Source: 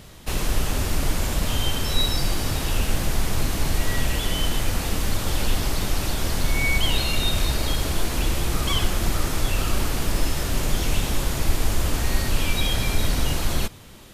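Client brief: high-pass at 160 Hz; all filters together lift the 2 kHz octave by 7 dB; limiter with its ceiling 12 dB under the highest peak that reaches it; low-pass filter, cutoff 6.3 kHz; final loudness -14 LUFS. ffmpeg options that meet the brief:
-af "highpass=160,lowpass=6300,equalizer=f=2000:t=o:g=8.5,volume=5.31,alimiter=limit=0.473:level=0:latency=1"

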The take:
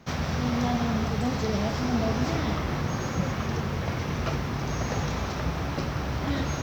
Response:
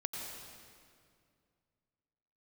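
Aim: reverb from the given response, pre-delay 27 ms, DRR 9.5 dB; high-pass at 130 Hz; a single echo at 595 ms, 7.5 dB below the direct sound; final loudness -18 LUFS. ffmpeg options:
-filter_complex "[0:a]highpass=130,aecho=1:1:595:0.422,asplit=2[s0][s1];[1:a]atrim=start_sample=2205,adelay=27[s2];[s1][s2]afir=irnorm=-1:irlink=0,volume=0.299[s3];[s0][s3]amix=inputs=2:normalize=0,volume=3.35"

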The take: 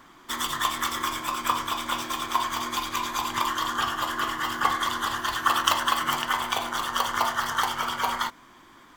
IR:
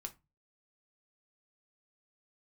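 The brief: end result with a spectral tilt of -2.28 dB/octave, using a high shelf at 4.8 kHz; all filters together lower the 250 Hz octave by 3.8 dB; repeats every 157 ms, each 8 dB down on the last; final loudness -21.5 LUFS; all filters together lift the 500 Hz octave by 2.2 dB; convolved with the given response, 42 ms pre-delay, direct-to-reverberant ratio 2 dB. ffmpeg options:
-filter_complex "[0:a]equalizer=f=250:t=o:g=-7,equalizer=f=500:t=o:g=5,highshelf=f=4800:g=-3,aecho=1:1:157|314|471|628|785:0.398|0.159|0.0637|0.0255|0.0102,asplit=2[s0][s1];[1:a]atrim=start_sample=2205,adelay=42[s2];[s1][s2]afir=irnorm=-1:irlink=0,volume=1.19[s3];[s0][s3]amix=inputs=2:normalize=0,volume=1.19"

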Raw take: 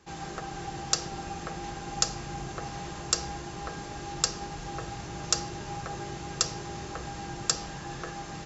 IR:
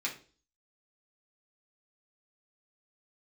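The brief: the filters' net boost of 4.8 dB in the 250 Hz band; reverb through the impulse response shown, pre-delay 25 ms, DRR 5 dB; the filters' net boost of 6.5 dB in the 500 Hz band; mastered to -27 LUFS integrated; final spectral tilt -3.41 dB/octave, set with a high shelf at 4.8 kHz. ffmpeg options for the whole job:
-filter_complex "[0:a]equalizer=f=250:t=o:g=4.5,equalizer=f=500:t=o:g=7,highshelf=f=4800:g=-5,asplit=2[s0][s1];[1:a]atrim=start_sample=2205,adelay=25[s2];[s1][s2]afir=irnorm=-1:irlink=0,volume=0.335[s3];[s0][s3]amix=inputs=2:normalize=0,volume=1.88"

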